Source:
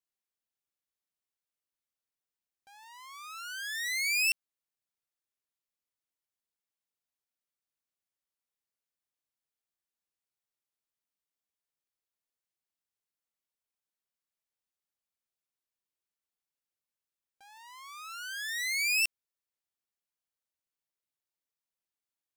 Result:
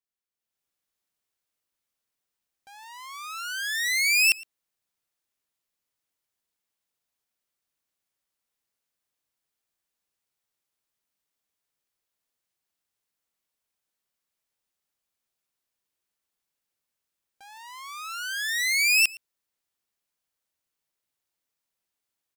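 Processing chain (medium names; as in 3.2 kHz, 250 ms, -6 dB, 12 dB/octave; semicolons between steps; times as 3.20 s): on a send: delay 113 ms -22.5 dB; on the sum: level rider gain up to 11 dB; trim -3.5 dB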